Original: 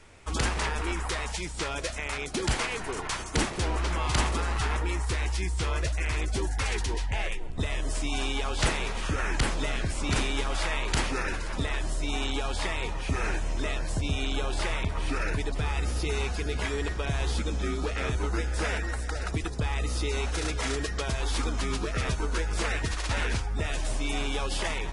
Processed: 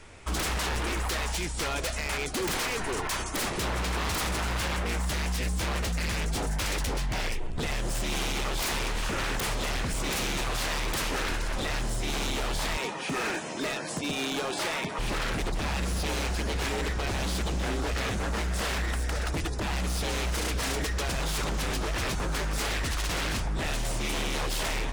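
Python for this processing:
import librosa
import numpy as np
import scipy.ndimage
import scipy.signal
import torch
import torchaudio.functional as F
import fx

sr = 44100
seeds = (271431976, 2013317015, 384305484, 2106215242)

y = fx.highpass(x, sr, hz=170.0, slope=24, at=(12.77, 14.99))
y = 10.0 ** (-28.5 / 20.0) * (np.abs((y / 10.0 ** (-28.5 / 20.0) + 3.0) % 4.0 - 2.0) - 1.0)
y = F.gain(torch.from_numpy(y), 4.0).numpy()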